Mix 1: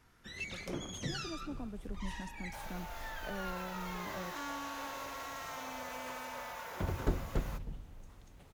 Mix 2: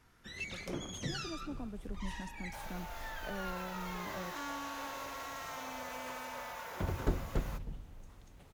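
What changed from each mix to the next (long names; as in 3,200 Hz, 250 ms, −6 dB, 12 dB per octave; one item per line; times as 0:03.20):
nothing changed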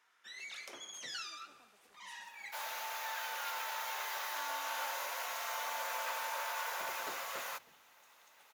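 speech −10.5 dB
second sound +10.0 dB
master: add Bessel high-pass filter 1,100 Hz, order 2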